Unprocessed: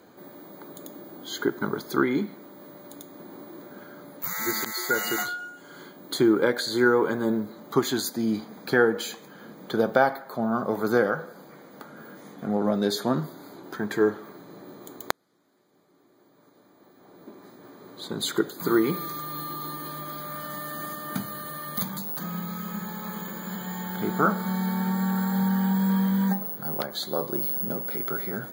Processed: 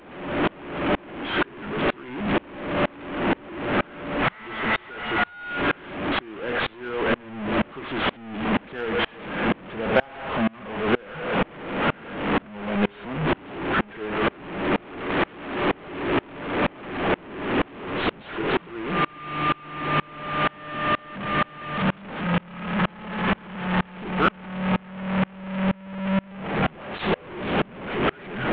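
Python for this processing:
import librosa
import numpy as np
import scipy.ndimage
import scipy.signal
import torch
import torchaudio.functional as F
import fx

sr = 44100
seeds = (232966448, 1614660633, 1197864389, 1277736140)

y = fx.delta_mod(x, sr, bps=16000, step_db=-15.5)
y = 10.0 ** (-5.5 / 20.0) * np.tanh(y / 10.0 ** (-5.5 / 20.0))
y = fx.tremolo_decay(y, sr, direction='swelling', hz=2.1, depth_db=31)
y = y * librosa.db_to_amplitude(4.0)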